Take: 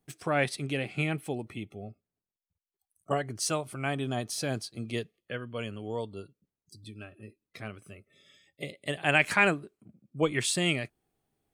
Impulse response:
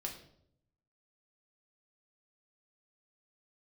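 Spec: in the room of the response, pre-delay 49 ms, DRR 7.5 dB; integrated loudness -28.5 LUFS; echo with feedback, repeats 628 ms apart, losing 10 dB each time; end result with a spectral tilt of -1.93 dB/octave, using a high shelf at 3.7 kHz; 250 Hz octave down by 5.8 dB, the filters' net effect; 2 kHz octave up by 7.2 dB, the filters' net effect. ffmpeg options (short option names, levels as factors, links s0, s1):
-filter_complex "[0:a]equalizer=f=250:t=o:g=-9,equalizer=f=2000:t=o:g=7,highshelf=f=3700:g=7.5,aecho=1:1:628|1256|1884|2512:0.316|0.101|0.0324|0.0104,asplit=2[s0][s1];[1:a]atrim=start_sample=2205,adelay=49[s2];[s1][s2]afir=irnorm=-1:irlink=0,volume=0.447[s3];[s0][s3]amix=inputs=2:normalize=0,volume=0.668"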